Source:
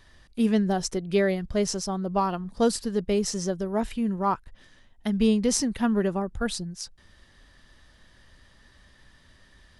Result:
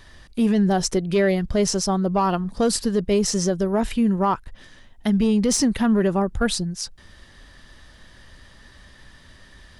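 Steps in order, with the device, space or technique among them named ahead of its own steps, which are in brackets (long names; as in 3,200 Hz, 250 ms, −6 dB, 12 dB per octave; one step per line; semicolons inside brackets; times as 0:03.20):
soft clipper into limiter (soft clipping −13.5 dBFS, distortion −22 dB; brickwall limiter −20.5 dBFS, peak gain reduction 6 dB)
level +8 dB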